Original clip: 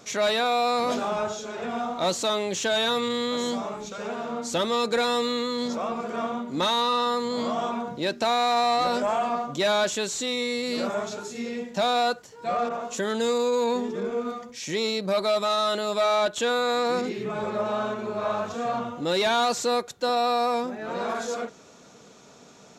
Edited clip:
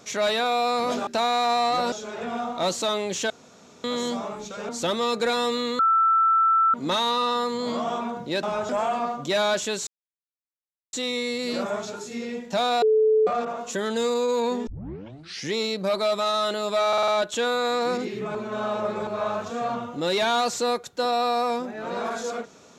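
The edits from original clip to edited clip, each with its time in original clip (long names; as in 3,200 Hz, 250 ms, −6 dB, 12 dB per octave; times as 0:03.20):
0:01.07–0:01.33: swap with 0:08.14–0:08.99
0:02.71–0:03.25: fill with room tone
0:04.10–0:04.40: remove
0:05.50–0:06.45: beep over 1,330 Hz −16 dBFS
0:10.17: splice in silence 1.06 s
0:12.06–0:12.51: beep over 435 Hz −15.5 dBFS
0:13.91: tape start 0.85 s
0:16.12: stutter 0.05 s, 5 plays
0:17.39–0:18.11: reverse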